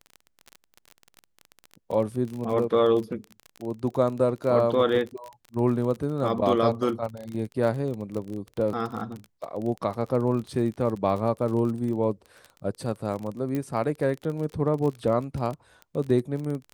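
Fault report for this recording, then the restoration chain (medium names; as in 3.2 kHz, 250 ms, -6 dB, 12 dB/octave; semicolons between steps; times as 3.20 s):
crackle 32 per s -31 dBFS
13.55 s: pop -18 dBFS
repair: de-click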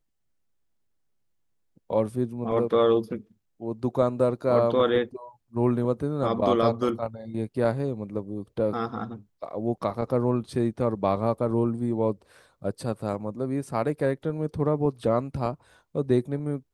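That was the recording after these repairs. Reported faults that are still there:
13.55 s: pop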